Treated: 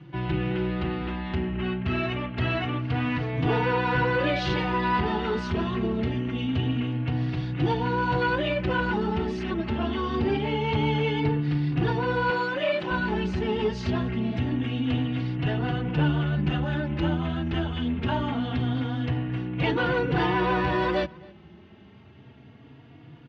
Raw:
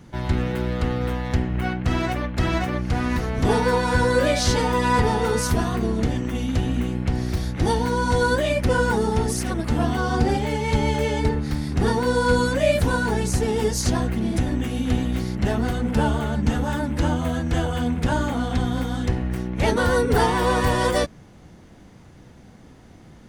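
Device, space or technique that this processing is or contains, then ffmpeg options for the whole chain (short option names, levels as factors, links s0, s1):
barber-pole flanger into a guitar amplifier: -filter_complex "[0:a]asplit=2[s0][s1];[s1]adelay=3.6,afreqshift=0.25[s2];[s0][s2]amix=inputs=2:normalize=1,asoftclip=type=tanh:threshold=0.158,highpass=94,equalizer=f=140:t=q:w=4:g=8,equalizer=f=230:t=q:w=4:g=-3,equalizer=f=340:t=q:w=4:g=7,equalizer=f=520:t=q:w=4:g=-5,equalizer=f=2800:t=q:w=4:g=8,lowpass=f=3700:w=0.5412,lowpass=f=3700:w=1.3066,asettb=1/sr,asplit=3[s3][s4][s5];[s3]atrim=end=12.304[s6];[s4]atrim=start=12.3:end=12.91,asetpts=PTS-STARTPTS,afade=t=in:d=0.004:c=qsin,afade=t=out:st=0.606:d=0.004:c=qsin,highpass=290[s7];[s5]atrim=start=12.906[s8];[s6][s7]acrossfade=d=0.004:c1=hsin:c2=qsin[s9];[s9][s8]acrossfade=d=0.004:c1=qsin:c2=hsin,asplit=2[s10][s11];[s11]adelay=268.2,volume=0.0708,highshelf=f=4000:g=-6.04[s12];[s10][s12]amix=inputs=2:normalize=0"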